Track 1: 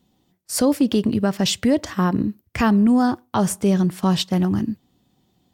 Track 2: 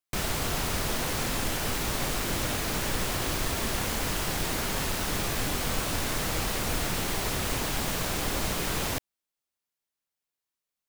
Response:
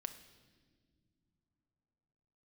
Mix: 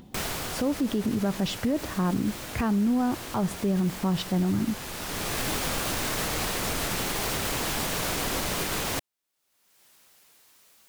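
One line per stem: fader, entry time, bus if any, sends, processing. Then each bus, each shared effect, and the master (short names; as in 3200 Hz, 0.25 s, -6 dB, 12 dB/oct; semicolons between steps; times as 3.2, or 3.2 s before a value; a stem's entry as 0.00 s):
-1.5 dB, 0.00 s, no send, LPF 1400 Hz 6 dB/oct
+2.5 dB, 0.00 s, no send, low shelf 120 Hz -6.5 dB; vibrato 0.57 Hz 92 cents; auto duck -10 dB, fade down 0.90 s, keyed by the first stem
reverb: off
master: upward compressor, threshold -36 dBFS; limiter -18.5 dBFS, peak gain reduction 8 dB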